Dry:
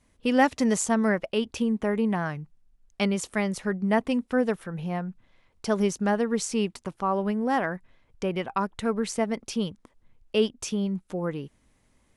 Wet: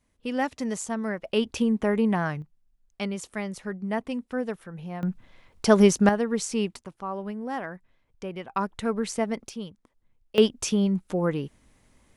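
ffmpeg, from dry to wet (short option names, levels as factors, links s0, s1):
-af "asetnsamples=n=441:p=0,asendcmd='1.25 volume volume 2dB;2.42 volume volume -5.5dB;5.03 volume volume 7.5dB;6.09 volume volume -0.5dB;6.81 volume volume -7dB;8.56 volume volume -0.5dB;9.49 volume volume -8dB;10.38 volume volume 4.5dB',volume=0.473"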